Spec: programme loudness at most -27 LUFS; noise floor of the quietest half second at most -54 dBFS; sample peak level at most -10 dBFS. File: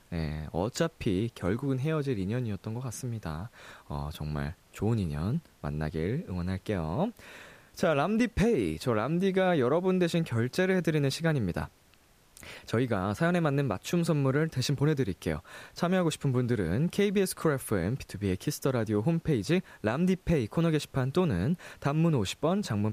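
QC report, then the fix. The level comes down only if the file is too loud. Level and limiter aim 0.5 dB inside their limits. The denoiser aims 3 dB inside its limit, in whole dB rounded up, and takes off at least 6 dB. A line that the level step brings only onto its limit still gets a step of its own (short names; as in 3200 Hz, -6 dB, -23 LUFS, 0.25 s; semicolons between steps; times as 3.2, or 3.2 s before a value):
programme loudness -29.5 LUFS: OK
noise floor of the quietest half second -61 dBFS: OK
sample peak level -15.0 dBFS: OK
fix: none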